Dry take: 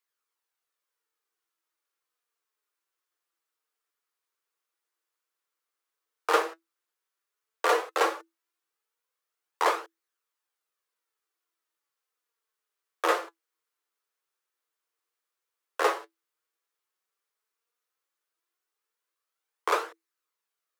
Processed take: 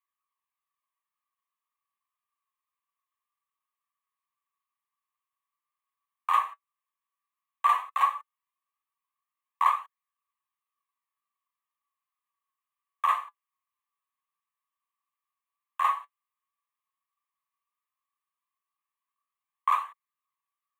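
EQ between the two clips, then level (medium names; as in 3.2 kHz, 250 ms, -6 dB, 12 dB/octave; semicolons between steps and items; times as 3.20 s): ladder high-pass 1.1 kHz, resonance 85%; static phaser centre 1.4 kHz, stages 6; +7.0 dB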